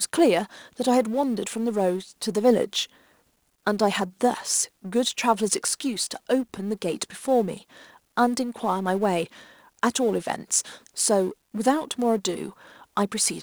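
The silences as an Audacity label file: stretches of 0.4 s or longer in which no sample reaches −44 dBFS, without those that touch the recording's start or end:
2.890000	3.660000	silence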